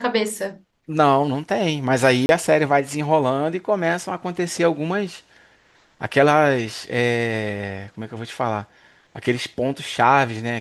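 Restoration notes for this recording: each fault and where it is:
2.26–2.29 gap 31 ms

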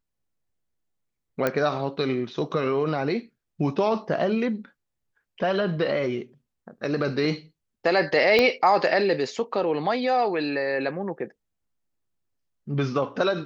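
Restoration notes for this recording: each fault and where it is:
1.47 pop -10 dBFS
8.39 pop -8 dBFS

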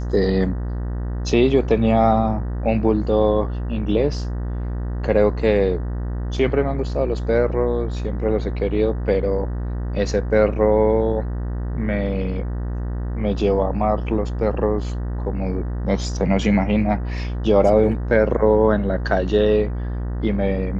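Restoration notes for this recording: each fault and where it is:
buzz 60 Hz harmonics 32 -25 dBFS

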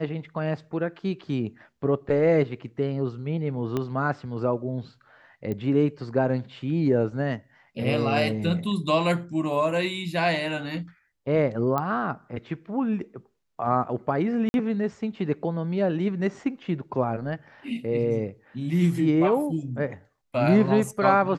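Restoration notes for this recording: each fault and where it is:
3.77 pop -15 dBFS
5.52 pop -20 dBFS
11.78 pop -14 dBFS
14.49–14.54 gap 51 ms

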